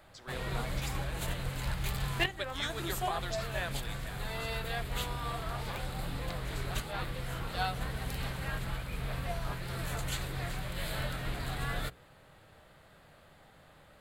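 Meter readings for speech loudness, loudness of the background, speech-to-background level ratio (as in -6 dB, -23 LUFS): -42.0 LUFS, -37.0 LUFS, -5.0 dB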